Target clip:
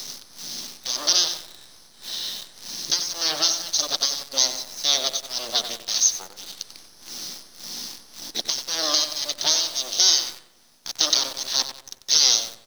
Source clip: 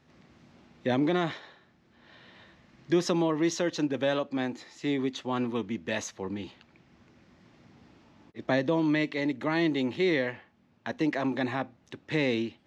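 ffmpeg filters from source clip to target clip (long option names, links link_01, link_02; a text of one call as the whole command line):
ffmpeg -i in.wav -filter_complex "[0:a]equalizer=frequency=1300:width=4.1:gain=-5.5,aeval=exprs='0.188*(cos(1*acos(clip(val(0)/0.188,-1,1)))-cos(1*PI/2))+0.0668*(cos(3*acos(clip(val(0)/0.188,-1,1)))-cos(3*PI/2))+0.0422*(cos(5*acos(clip(val(0)/0.188,-1,1)))-cos(5*PI/2))+0.075*(cos(8*acos(clip(val(0)/0.188,-1,1)))-cos(8*PI/2))':channel_layout=same,acrossover=split=400[link_01][link_02];[link_01]acompressor=threshold=-31dB:ratio=6[link_03];[link_02]aexciter=amount=6.9:drive=9.9:freq=3600[link_04];[link_03][link_04]amix=inputs=2:normalize=0,alimiter=limit=-1.5dB:level=0:latency=1:release=249,aemphasis=mode=production:type=bsi,acompressor=mode=upward:threshold=-12dB:ratio=2.5,tremolo=f=1.8:d=0.79,afftfilt=real='re*between(b*sr/4096,130,6500)':imag='im*between(b*sr/4096,130,6500)':win_size=4096:overlap=0.75,asplit=2[link_05][link_06];[link_06]adelay=93,lowpass=frequency=2900:poles=1,volume=-7.5dB,asplit=2[link_07][link_08];[link_08]adelay=93,lowpass=frequency=2900:poles=1,volume=0.55,asplit=2[link_09][link_10];[link_10]adelay=93,lowpass=frequency=2900:poles=1,volume=0.55,asplit=2[link_11][link_12];[link_12]adelay=93,lowpass=frequency=2900:poles=1,volume=0.55,asplit=2[link_13][link_14];[link_14]adelay=93,lowpass=frequency=2900:poles=1,volume=0.55,asplit=2[link_15][link_16];[link_16]adelay=93,lowpass=frequency=2900:poles=1,volume=0.55,asplit=2[link_17][link_18];[link_18]adelay=93,lowpass=frequency=2900:poles=1,volume=0.55[link_19];[link_07][link_09][link_11][link_13][link_15][link_17][link_19]amix=inputs=7:normalize=0[link_20];[link_05][link_20]amix=inputs=2:normalize=0,acrusher=bits=6:dc=4:mix=0:aa=0.000001,volume=-4dB" out.wav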